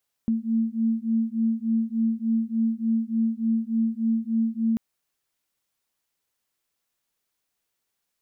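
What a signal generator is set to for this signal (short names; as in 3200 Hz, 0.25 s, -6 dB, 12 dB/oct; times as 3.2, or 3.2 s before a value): beating tones 224 Hz, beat 3.4 Hz, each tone -24.5 dBFS 4.49 s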